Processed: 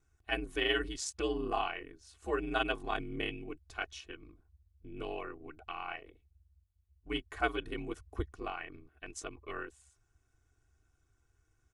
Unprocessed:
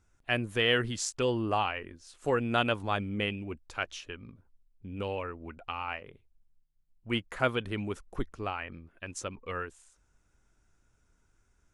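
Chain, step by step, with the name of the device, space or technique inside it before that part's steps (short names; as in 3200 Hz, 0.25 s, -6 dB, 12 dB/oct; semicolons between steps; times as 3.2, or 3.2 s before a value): ring-modulated robot voice (ring modulator 70 Hz; comb 2.7 ms, depth 79%); gain -4 dB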